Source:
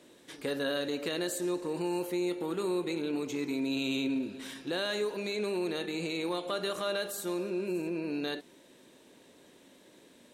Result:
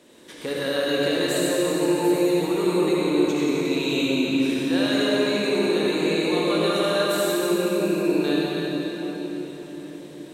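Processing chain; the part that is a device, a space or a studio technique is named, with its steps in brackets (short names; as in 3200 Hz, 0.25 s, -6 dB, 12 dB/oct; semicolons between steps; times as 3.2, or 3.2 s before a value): cathedral (reverb RT60 4.8 s, pre-delay 55 ms, DRR -6.5 dB); gain +3.5 dB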